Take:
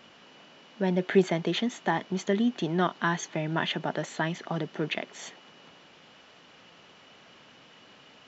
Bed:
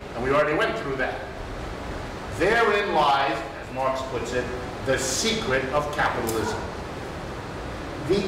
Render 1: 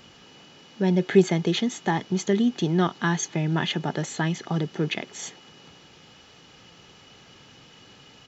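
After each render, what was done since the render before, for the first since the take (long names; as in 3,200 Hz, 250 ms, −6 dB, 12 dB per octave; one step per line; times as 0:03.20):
bass and treble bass +12 dB, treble +9 dB
comb filter 2.4 ms, depth 33%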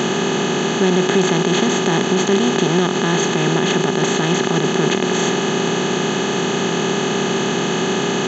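compressor on every frequency bin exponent 0.2
brickwall limiter −5 dBFS, peak gain reduction 6 dB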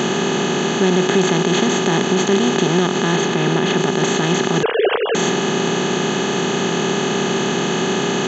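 0:03.16–0:03.77: high-frequency loss of the air 56 metres
0:04.63–0:05.15: three sine waves on the formant tracks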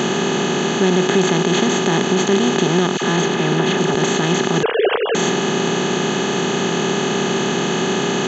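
0:02.97–0:03.95: all-pass dispersion lows, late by 50 ms, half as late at 1,100 Hz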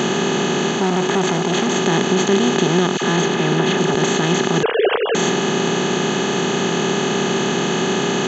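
0:00.71–0:01.76: saturating transformer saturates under 670 Hz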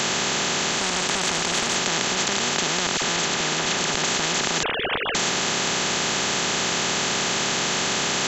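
every bin compressed towards the loudest bin 4 to 1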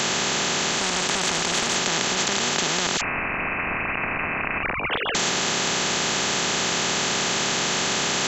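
0:03.01–0:04.91: voice inversion scrambler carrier 2,800 Hz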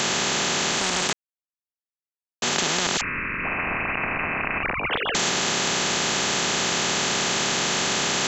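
0:01.13–0:02.42: silence
0:03.01–0:03.44: phaser with its sweep stopped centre 1,800 Hz, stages 4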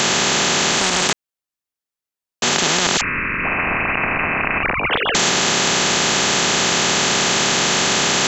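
level +6.5 dB
brickwall limiter −2 dBFS, peak gain reduction 2.5 dB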